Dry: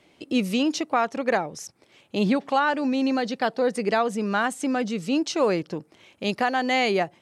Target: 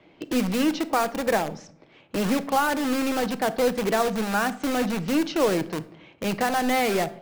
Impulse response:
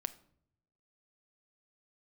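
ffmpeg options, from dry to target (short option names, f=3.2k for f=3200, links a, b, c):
-filter_complex "[0:a]lowpass=4.8k,aemphasis=mode=reproduction:type=75fm,acrossover=split=210|2500[a][b][c];[a]asoftclip=type=tanh:threshold=-31dB[d];[d][b][c]amix=inputs=3:normalize=0,aeval=exprs='0.335*(cos(1*acos(clip(val(0)/0.335,-1,1)))-cos(1*PI/2))+0.00266*(cos(4*acos(clip(val(0)/0.335,-1,1)))-cos(4*PI/2))+0.00237*(cos(8*acos(clip(val(0)/0.335,-1,1)))-cos(8*PI/2))':c=same,asplit=2[e][f];[f]aeval=exprs='(mod(17.8*val(0)+1,2)-1)/17.8':c=same,volume=-3dB[g];[e][g]amix=inputs=2:normalize=0[h];[1:a]atrim=start_sample=2205[i];[h][i]afir=irnorm=-1:irlink=0"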